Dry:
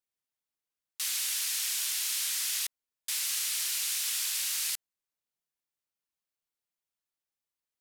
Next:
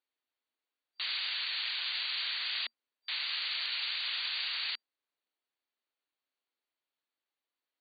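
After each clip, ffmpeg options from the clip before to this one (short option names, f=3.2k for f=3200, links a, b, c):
-af "afftfilt=real='re*between(b*sr/4096,230,4700)':imag='im*between(b*sr/4096,230,4700)':win_size=4096:overlap=0.75,volume=3.5dB"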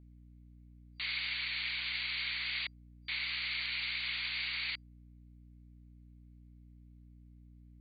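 -af "equalizer=f=2.2k:t=o:w=0.33:g=12,aeval=exprs='val(0)+0.00316*(sin(2*PI*60*n/s)+sin(2*PI*2*60*n/s)/2+sin(2*PI*3*60*n/s)/3+sin(2*PI*4*60*n/s)/4+sin(2*PI*5*60*n/s)/5)':c=same,volume=-5dB"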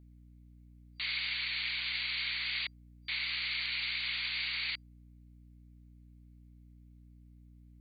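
-af "highshelf=f=4.1k:g=4.5"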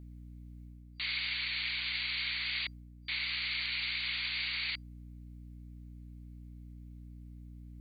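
-af "areverse,acompressor=mode=upward:threshold=-43dB:ratio=2.5,areverse,aeval=exprs='val(0)+0.000891*(sin(2*PI*60*n/s)+sin(2*PI*2*60*n/s)/2+sin(2*PI*3*60*n/s)/3+sin(2*PI*4*60*n/s)/4+sin(2*PI*5*60*n/s)/5)':c=same"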